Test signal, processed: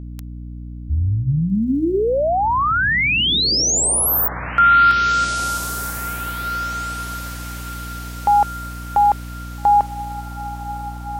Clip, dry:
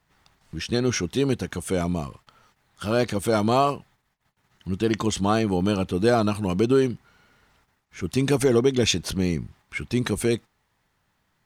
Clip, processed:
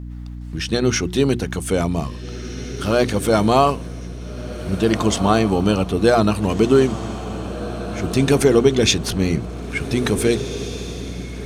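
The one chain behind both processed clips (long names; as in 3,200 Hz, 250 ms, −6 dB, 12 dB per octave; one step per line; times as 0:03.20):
mains-hum notches 60/120/180/240/300/360 Hz
feedback delay with all-pass diffusion 1,773 ms, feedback 45%, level −12 dB
mains hum 60 Hz, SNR 12 dB
level +5.5 dB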